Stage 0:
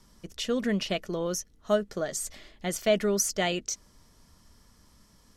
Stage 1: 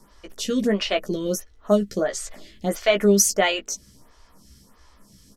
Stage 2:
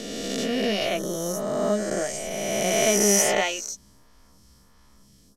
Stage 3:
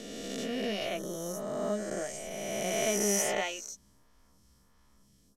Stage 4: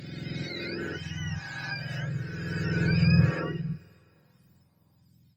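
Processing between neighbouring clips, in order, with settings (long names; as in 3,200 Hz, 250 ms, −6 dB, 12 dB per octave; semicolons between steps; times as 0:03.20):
double-tracking delay 15 ms −5.5 dB; phaser with staggered stages 1.5 Hz; level +8.5 dB
peak hold with a rise ahead of every peak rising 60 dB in 2.58 s; level −7.5 dB
parametric band 4,700 Hz −3.5 dB 0.46 octaves; level −8.5 dB
frequency axis turned over on the octave scale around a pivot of 1,000 Hz; coupled-rooms reverb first 0.2 s, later 2.6 s, from −18 dB, DRR 13 dB; Opus 48 kbit/s 48,000 Hz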